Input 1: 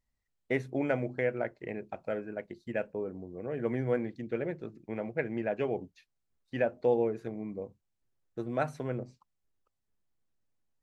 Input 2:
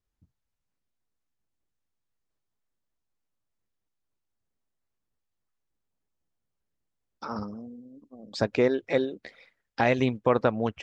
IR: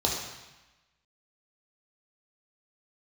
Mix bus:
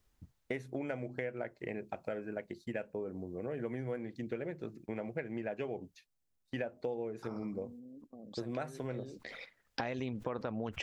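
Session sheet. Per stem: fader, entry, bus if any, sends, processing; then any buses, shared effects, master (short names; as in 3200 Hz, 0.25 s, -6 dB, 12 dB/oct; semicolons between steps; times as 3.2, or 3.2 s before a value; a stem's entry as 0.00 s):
+1.5 dB, 0.00 s, no send, gate -55 dBFS, range -7 dB; high shelf 4800 Hz +7.5 dB
-3.5 dB, 0.00 s, no send, gate -51 dBFS, range -25 dB; fast leveller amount 70%; auto duck -20 dB, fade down 1.80 s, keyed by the first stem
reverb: off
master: compressor 6:1, threshold -35 dBFS, peak gain reduction 15 dB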